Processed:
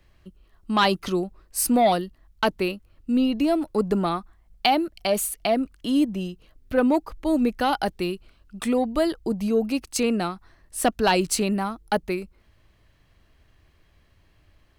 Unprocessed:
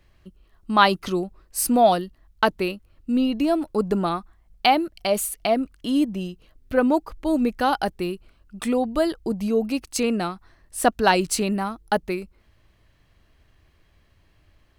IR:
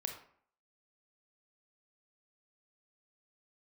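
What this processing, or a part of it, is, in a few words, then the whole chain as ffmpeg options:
one-band saturation: -filter_complex "[0:a]asettb=1/sr,asplit=3[a][b][c];[a]atrim=end=7.864[d];[b]atrim=start=7.86:end=8.59,asetpts=PTS-STARTPTS,afade=t=in:d=0.004:c=qsin,afade=t=out:st=0.726:d=0.004:c=qsin,equalizer=f=3.8k:t=o:w=1.4:g=4[e];[c]atrim=start=8.586[f];[d][e]acrossfade=d=0.004:c1=hsin:c2=qsin[g];[g][f]acrossfade=d=0.004:c1=qsin:c2=hsin,acrossover=split=410|2300[h][i][j];[i]asoftclip=type=tanh:threshold=-15.5dB[k];[h][k][j]amix=inputs=3:normalize=0"

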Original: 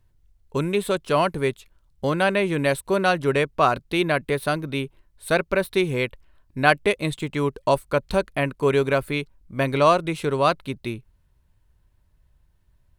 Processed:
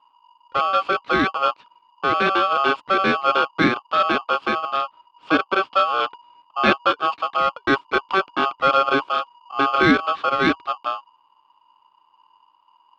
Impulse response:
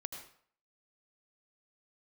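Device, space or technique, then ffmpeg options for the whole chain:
ring modulator pedal into a guitar cabinet: -filter_complex "[0:a]aeval=exprs='val(0)*sgn(sin(2*PI*960*n/s))':c=same,highpass=81,equalizer=f=83:t=q:w=4:g=-10,equalizer=f=290:t=q:w=4:g=8,equalizer=f=1.2k:t=q:w=4:g=10,equalizer=f=1.9k:t=q:w=4:g=-7,lowpass=f=3.6k:w=0.5412,lowpass=f=3.6k:w=1.3066,asettb=1/sr,asplit=3[a][b][c];[a]atrim=end=4.624[d];[b]atrim=start=4.62:end=6.73,asetpts=PTS-STARTPTS,afade=t=in:d=0.004:c=qsin,afade=t=out:st=2.106:d=0.004:c=qsin,lowpass=8.4k[e];[c]atrim=start=6.726[f];[d][e]acrossfade=d=0.004:c1=hsin:c2=qsin[g];[g][f]acrossfade=d=0.004:c1=qsin:c2=hsin"

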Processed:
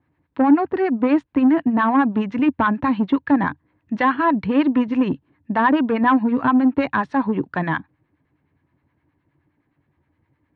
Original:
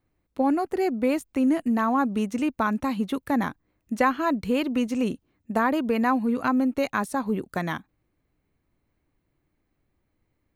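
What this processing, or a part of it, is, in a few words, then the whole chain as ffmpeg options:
guitar amplifier with harmonic tremolo: -filter_complex "[0:a]acrossover=split=830[a][b];[a]aeval=exprs='val(0)*(1-0.7/2+0.7/2*cos(2*PI*9.6*n/s))':c=same[c];[b]aeval=exprs='val(0)*(1-0.7/2-0.7/2*cos(2*PI*9.6*n/s))':c=same[d];[c][d]amix=inputs=2:normalize=0,asoftclip=type=tanh:threshold=-21dB,highpass=85,equalizer=f=87:t=q:w=4:g=10,equalizer=f=140:t=q:w=4:g=9,equalizer=f=290:t=q:w=4:g=8,equalizer=f=950:t=q:w=4:g=9,equalizer=f=1.7k:t=q:w=4:g=8,lowpass=f=3.5k:w=0.5412,lowpass=f=3.5k:w=1.3066,volume=7dB"

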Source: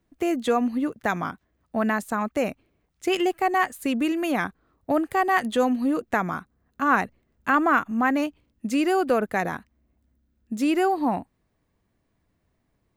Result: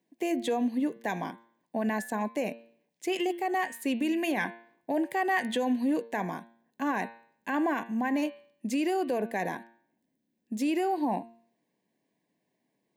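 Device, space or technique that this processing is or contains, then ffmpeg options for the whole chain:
PA system with an anti-feedback notch: -filter_complex "[0:a]highpass=f=180:w=0.5412,highpass=f=180:w=1.3066,asuperstop=centerf=1300:order=4:qfactor=2.4,bandreject=f=115.4:t=h:w=4,bandreject=f=230.8:t=h:w=4,bandreject=f=346.2:t=h:w=4,bandreject=f=461.6:t=h:w=4,bandreject=f=577:t=h:w=4,bandreject=f=692.4:t=h:w=4,bandreject=f=807.8:t=h:w=4,bandreject=f=923.2:t=h:w=4,bandreject=f=1.0386k:t=h:w=4,bandreject=f=1.154k:t=h:w=4,bandreject=f=1.2694k:t=h:w=4,bandreject=f=1.3848k:t=h:w=4,bandreject=f=1.5002k:t=h:w=4,bandreject=f=1.6156k:t=h:w=4,bandreject=f=1.731k:t=h:w=4,bandreject=f=1.8464k:t=h:w=4,bandreject=f=1.9618k:t=h:w=4,bandreject=f=2.0772k:t=h:w=4,bandreject=f=2.1926k:t=h:w=4,bandreject=f=2.308k:t=h:w=4,bandreject=f=2.4234k:t=h:w=4,bandreject=f=2.5388k:t=h:w=4,bandreject=f=2.6542k:t=h:w=4,bandreject=f=2.7696k:t=h:w=4,bandreject=f=2.885k:t=h:w=4,bandreject=f=3.0004k:t=h:w=4,bandreject=f=3.1158k:t=h:w=4,bandreject=f=3.2312k:t=h:w=4,bandreject=f=3.3466k:t=h:w=4,bandreject=f=3.462k:t=h:w=4,bandreject=f=3.5774k:t=h:w=4,bandreject=f=3.6928k:t=h:w=4,bandreject=f=3.8082k:t=h:w=4,bandreject=f=3.9236k:t=h:w=4,bandreject=f=4.039k:t=h:w=4,bandreject=f=4.1544k:t=h:w=4,bandreject=f=4.2698k:t=h:w=4,bandreject=f=4.3852k:t=h:w=4,alimiter=limit=-18.5dB:level=0:latency=1:release=27,asettb=1/sr,asplit=3[a][b][c];[a]atrim=end=4.134[d];[b]atrim=start=4.13:end=6.08,asetpts=PTS-STARTPTS,afade=t=in:d=0.004:c=qsin,afade=t=out:st=1.946:d=0.004:c=qsin,equalizer=f=1.8k:t=o:w=1.5:g=4[e];[c]atrim=start=6.076[f];[d][e]acrossfade=d=0.004:c1=hsin:c2=qsin[g];[g][f]acrossfade=d=0.004:c1=qsin:c2=hsin,volume=-2.5dB"

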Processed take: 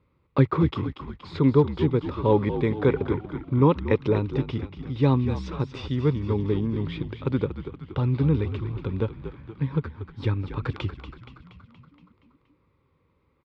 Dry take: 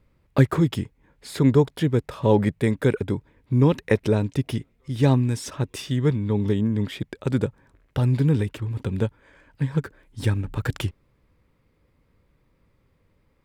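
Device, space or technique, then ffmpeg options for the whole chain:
frequency-shifting delay pedal into a guitar cabinet: -filter_complex "[0:a]asplit=8[a][b][c][d][e][f][g][h];[b]adelay=236,afreqshift=-56,volume=-10dB[i];[c]adelay=472,afreqshift=-112,volume=-14.4dB[j];[d]adelay=708,afreqshift=-168,volume=-18.9dB[k];[e]adelay=944,afreqshift=-224,volume=-23.3dB[l];[f]adelay=1180,afreqshift=-280,volume=-27.7dB[m];[g]adelay=1416,afreqshift=-336,volume=-32.2dB[n];[h]adelay=1652,afreqshift=-392,volume=-36.6dB[o];[a][i][j][k][l][m][n][o]amix=inputs=8:normalize=0,highpass=77,equalizer=f=120:t=q:w=4:g=-3,equalizer=f=210:t=q:w=4:g=-6,equalizer=f=670:t=q:w=4:g=-9,equalizer=f=1.1k:t=q:w=4:g=5,equalizer=f=1.7k:t=q:w=4:g=-9,equalizer=f=3k:t=q:w=4:g=-5,lowpass=f=3.8k:w=0.5412,lowpass=f=3.8k:w=1.3066,asettb=1/sr,asplit=3[p][q][r];[p]atrim=end=2.824[s];[q]atrim=start=2.82:end=3.79,asetpts=PTS-STARTPTS,afade=t=in:d=0.004:c=qsin,afade=t=out:st=0.966:d=0.004:c=qsin,equalizer=f=840:t=o:w=1.6:g=5[t];[r]atrim=start=3.786[u];[s][t]acrossfade=d=0.004:c1=hsin:c2=qsin[v];[v][u]acrossfade=d=0.004:c1=qsin:c2=hsin"

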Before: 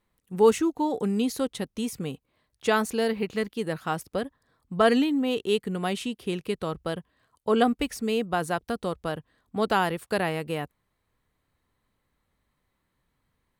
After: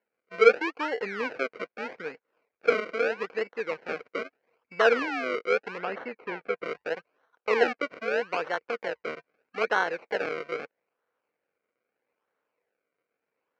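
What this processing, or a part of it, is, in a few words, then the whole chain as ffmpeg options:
circuit-bent sampling toy: -filter_complex "[0:a]acrusher=samples=35:mix=1:aa=0.000001:lfo=1:lforange=35:lforate=0.79,highpass=450,equalizer=f=480:t=q:w=4:g=9,equalizer=f=1.5k:t=q:w=4:g=7,equalizer=f=2.3k:t=q:w=4:g=10,equalizer=f=3.5k:t=q:w=4:g=-10,lowpass=f=4.4k:w=0.5412,lowpass=f=4.4k:w=1.3066,asettb=1/sr,asplit=3[a][b][c];[a]atrim=end=5.784[d];[b]atrim=start=5.78:end=6.64,asetpts=PTS-STARTPTS,afade=t=in:d=0.004:c=qsin,afade=t=out:st=0.856:d=0.004:c=qsin,bass=f=250:g=3,treble=f=4k:g=-11[e];[c]atrim=start=6.636[f];[d][e]acrossfade=d=0.004:c1=hsin:c2=qsin[g];[g][f]acrossfade=d=0.004:c1=qsin:c2=hsin,volume=-3.5dB"

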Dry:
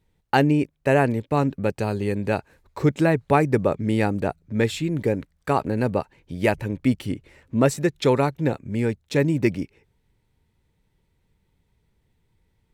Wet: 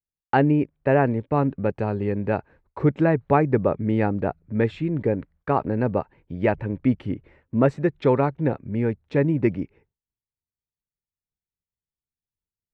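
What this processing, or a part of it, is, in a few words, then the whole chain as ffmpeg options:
hearing-loss simulation: -af "lowpass=1.8k,agate=range=-33dB:threshold=-47dB:ratio=3:detection=peak"

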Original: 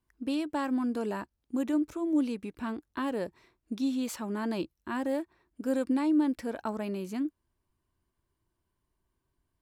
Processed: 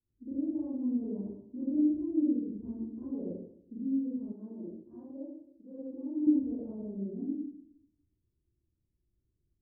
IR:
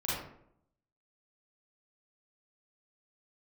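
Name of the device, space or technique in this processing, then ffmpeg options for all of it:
next room: -filter_complex "[0:a]lowpass=f=420:w=0.5412,lowpass=f=420:w=1.3066[a];[1:a]atrim=start_sample=2205[b];[a][b]afir=irnorm=-1:irlink=0,asettb=1/sr,asplit=3[c][d][e];[c]atrim=end=4.324[f];[d]atrim=start=4.32:end=6.27,asetpts=PTS-STARTPTS,afade=t=in:d=0.004:c=qsin,afade=t=out:st=1.946:d=0.004:c=qsin,lowshelf=f=450:g=-11[g];[e]atrim=start=6.266[h];[f][g]acrossfade=d=0.004:c1=hsin:c2=qsin[i];[i][h]acrossfade=d=0.004:c1=qsin:c2=hsin,volume=-8dB"

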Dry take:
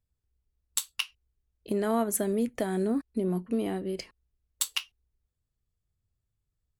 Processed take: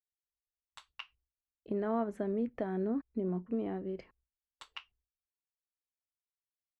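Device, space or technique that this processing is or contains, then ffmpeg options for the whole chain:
hearing-loss simulation: -af "lowpass=1.7k,agate=range=-33dB:threshold=-59dB:ratio=3:detection=peak,volume=-5.5dB"

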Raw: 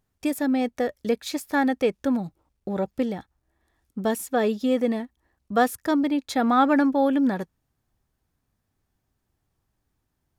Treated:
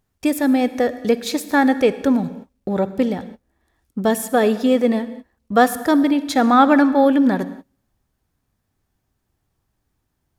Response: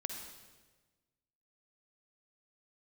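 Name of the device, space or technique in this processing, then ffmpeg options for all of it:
keyed gated reverb: -filter_complex "[0:a]asplit=3[a][b][c];[1:a]atrim=start_sample=2205[d];[b][d]afir=irnorm=-1:irlink=0[e];[c]apad=whole_len=457814[f];[e][f]sidechaingate=range=-33dB:threshold=-52dB:ratio=16:detection=peak,volume=-6dB[g];[a][g]amix=inputs=2:normalize=0,volume=3.5dB"

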